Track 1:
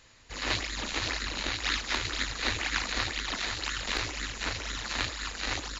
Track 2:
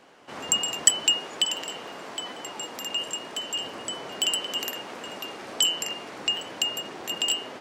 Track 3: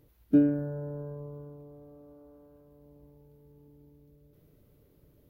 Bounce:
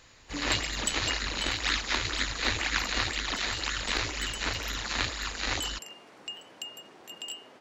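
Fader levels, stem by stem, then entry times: +1.5, −13.5, −18.5 decibels; 0.00, 0.00, 0.00 seconds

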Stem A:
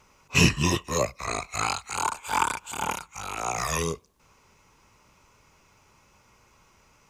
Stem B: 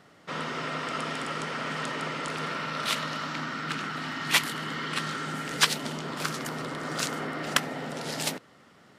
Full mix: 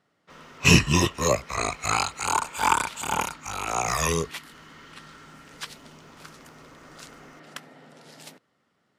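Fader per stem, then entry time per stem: +3.0, −15.0 decibels; 0.30, 0.00 seconds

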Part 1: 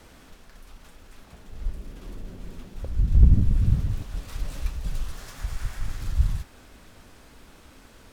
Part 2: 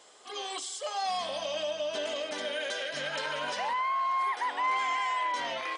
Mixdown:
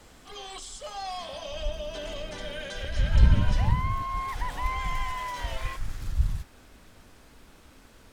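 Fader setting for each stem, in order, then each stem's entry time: −3.0, −4.0 decibels; 0.00, 0.00 seconds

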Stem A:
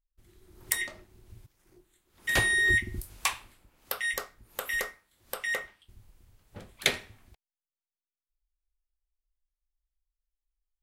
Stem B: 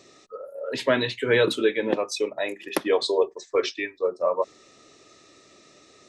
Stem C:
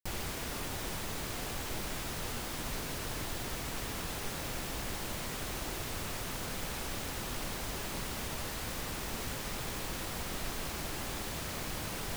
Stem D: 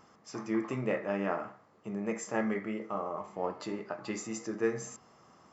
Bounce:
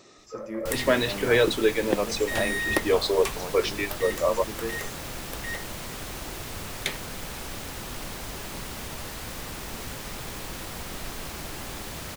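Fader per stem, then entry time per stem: −5.0, −0.5, +2.0, −3.5 decibels; 0.00, 0.00, 0.60, 0.00 seconds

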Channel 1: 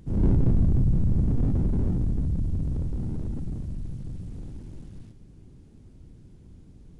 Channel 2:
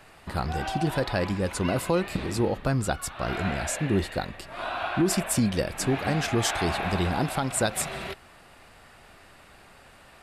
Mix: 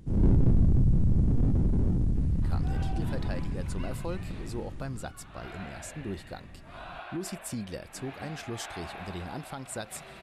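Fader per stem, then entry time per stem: −1.0, −12.0 decibels; 0.00, 2.15 seconds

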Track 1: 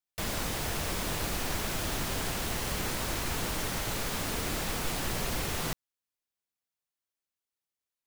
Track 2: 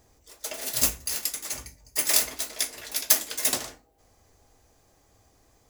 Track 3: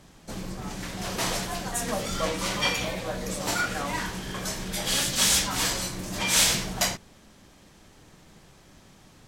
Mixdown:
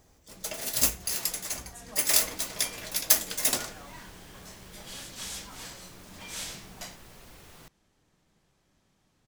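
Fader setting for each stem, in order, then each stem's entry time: −18.5, −1.0, −17.0 decibels; 1.95, 0.00, 0.00 seconds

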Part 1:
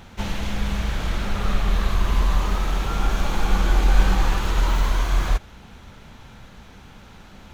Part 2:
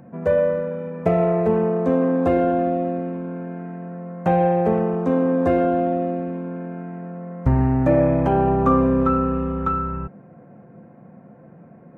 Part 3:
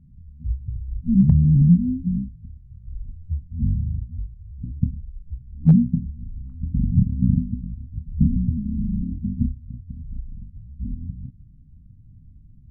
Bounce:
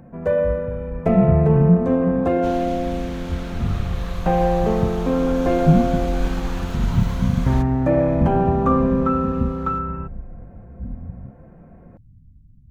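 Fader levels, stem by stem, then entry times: −7.0, −1.0, −1.5 decibels; 2.25, 0.00, 0.00 seconds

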